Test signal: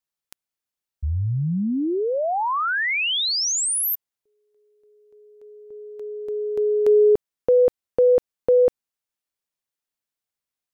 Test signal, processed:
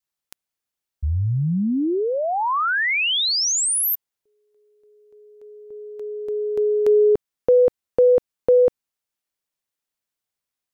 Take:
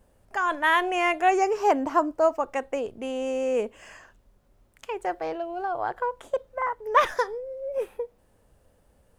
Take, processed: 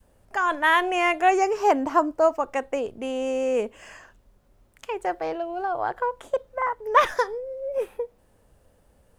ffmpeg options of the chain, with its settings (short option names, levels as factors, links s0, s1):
-af "adynamicequalizer=threshold=0.0501:dfrequency=520:dqfactor=1:tfrequency=520:tqfactor=1:attack=5:release=100:ratio=0.375:range=2:mode=cutabove:tftype=bell,volume=1.26"